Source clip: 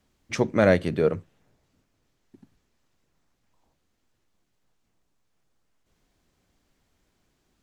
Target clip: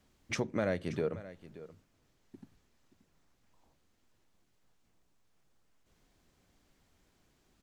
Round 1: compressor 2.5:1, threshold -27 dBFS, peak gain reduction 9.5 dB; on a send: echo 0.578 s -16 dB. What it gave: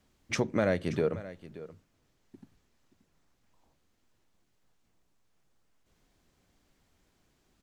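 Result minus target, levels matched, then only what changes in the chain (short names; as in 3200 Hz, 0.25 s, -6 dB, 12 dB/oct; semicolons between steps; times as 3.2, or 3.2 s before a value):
compressor: peak gain reduction -5 dB
change: compressor 2.5:1, threshold -35 dBFS, peak gain reduction 14.5 dB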